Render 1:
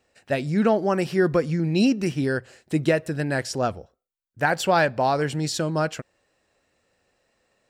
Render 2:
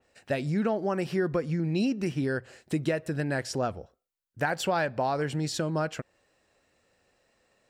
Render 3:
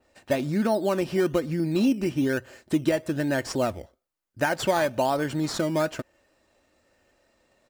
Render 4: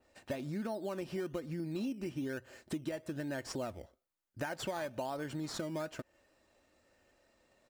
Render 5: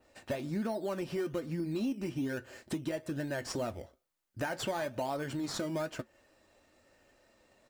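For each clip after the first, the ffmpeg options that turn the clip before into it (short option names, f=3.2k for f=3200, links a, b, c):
-af "acompressor=threshold=-27dB:ratio=2.5,adynamicequalizer=threshold=0.00447:dfrequency=3100:dqfactor=0.7:tfrequency=3100:tqfactor=0.7:attack=5:release=100:ratio=0.375:range=2:mode=cutabove:tftype=highshelf"
-filter_complex "[0:a]aecho=1:1:3.3:0.42,asplit=2[a][b];[b]acrusher=samples=13:mix=1:aa=0.000001:lfo=1:lforange=7.8:lforate=1.1,volume=-5.5dB[c];[a][c]amix=inputs=2:normalize=0"
-af "acompressor=threshold=-34dB:ratio=3,volume=-4.5dB"
-af "asoftclip=type=tanh:threshold=-28dB,flanger=delay=6.3:depth=4.1:regen=-66:speed=1:shape=triangular,volume=8.5dB"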